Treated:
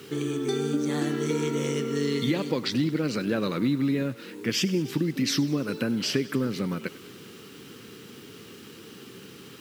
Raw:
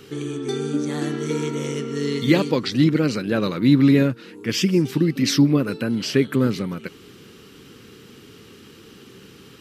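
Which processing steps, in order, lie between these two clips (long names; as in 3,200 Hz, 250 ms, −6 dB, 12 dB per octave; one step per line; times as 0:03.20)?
downward compressor 6 to 1, threshold −22 dBFS, peak gain reduction 11.5 dB
bit reduction 9 bits
high-pass filter 110 Hz
on a send: feedback echo with a high-pass in the loop 99 ms, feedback 68%, level −18 dB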